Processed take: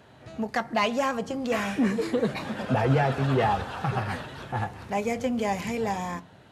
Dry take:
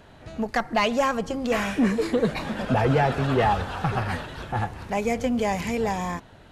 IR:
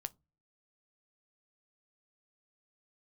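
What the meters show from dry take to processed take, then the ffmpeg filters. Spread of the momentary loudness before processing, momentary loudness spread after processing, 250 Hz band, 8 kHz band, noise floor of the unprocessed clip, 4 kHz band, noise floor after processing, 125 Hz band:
9 LU, 10 LU, -2.5 dB, -3.0 dB, -49 dBFS, -3.0 dB, -52 dBFS, -1.0 dB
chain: -filter_complex "[0:a]highpass=85[a];[1:a]atrim=start_sample=2205[b];[a][b]afir=irnorm=-1:irlink=0"

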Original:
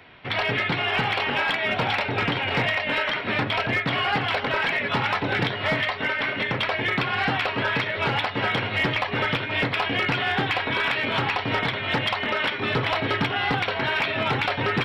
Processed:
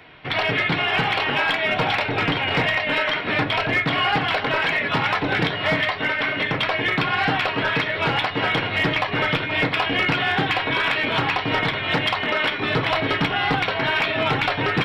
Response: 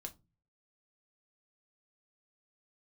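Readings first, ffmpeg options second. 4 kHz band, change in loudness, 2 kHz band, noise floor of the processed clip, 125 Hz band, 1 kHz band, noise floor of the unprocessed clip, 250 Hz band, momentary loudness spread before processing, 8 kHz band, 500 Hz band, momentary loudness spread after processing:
+3.0 dB, +3.0 dB, +3.0 dB, -28 dBFS, +2.0 dB, +3.0 dB, -31 dBFS, +3.0 dB, 2 LU, n/a, +3.0 dB, 2 LU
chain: -filter_complex "[0:a]asplit=2[a][b];[1:a]atrim=start_sample=2205[c];[b][c]afir=irnorm=-1:irlink=0,volume=3.5dB[d];[a][d]amix=inputs=2:normalize=0,volume=-2.5dB"

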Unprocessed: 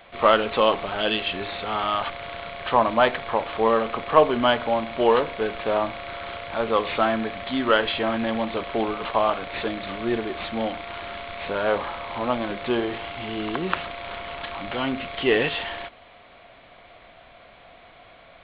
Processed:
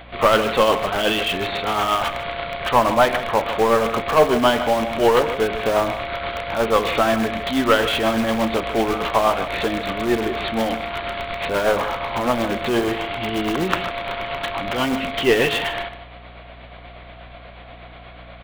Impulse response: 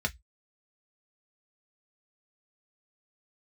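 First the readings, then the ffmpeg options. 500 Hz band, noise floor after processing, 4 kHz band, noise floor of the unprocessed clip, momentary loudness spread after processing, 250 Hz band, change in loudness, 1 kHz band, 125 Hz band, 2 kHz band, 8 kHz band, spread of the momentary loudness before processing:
+4.0 dB, -41 dBFS, +4.5 dB, -50 dBFS, 9 LU, +5.0 dB, +4.0 dB, +3.5 dB, +6.5 dB, +4.5 dB, n/a, 13 LU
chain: -filter_complex "[0:a]aeval=exprs='(tanh(3.98*val(0)+0.1)-tanh(0.1))/3.98':c=same,tremolo=f=8.3:d=0.42,asplit=2[a][b];[b]aeval=exprs='(mod(18.8*val(0)+1,2)-1)/18.8':c=same,volume=-11dB[c];[a][c]amix=inputs=2:normalize=0,aeval=exprs='val(0)+0.00316*(sin(2*PI*60*n/s)+sin(2*PI*2*60*n/s)/2+sin(2*PI*3*60*n/s)/3+sin(2*PI*4*60*n/s)/4+sin(2*PI*5*60*n/s)/5)':c=same,asplit=2[d][e];[e]adelay=151.6,volume=-12dB,highshelf=f=4k:g=-3.41[f];[d][f]amix=inputs=2:normalize=0,volume=6.5dB"

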